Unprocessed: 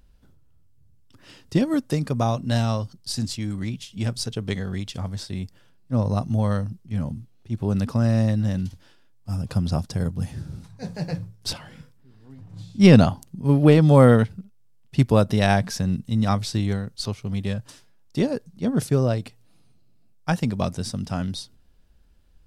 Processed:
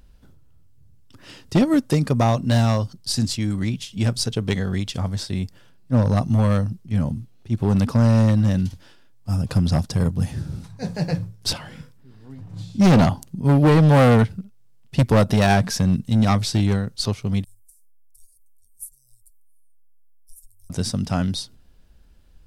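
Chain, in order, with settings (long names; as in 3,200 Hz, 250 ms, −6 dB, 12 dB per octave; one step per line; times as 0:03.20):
0:17.44–0:20.70: inverse Chebyshev band-stop filter 150–2,800 Hz, stop band 70 dB
hard clipping −16 dBFS, distortion −8 dB
level +5 dB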